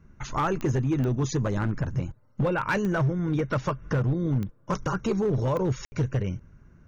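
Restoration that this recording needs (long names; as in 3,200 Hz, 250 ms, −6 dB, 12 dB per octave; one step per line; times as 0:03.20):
clipped peaks rebuilt −19.5 dBFS
click removal
ambience match 0:05.85–0:05.92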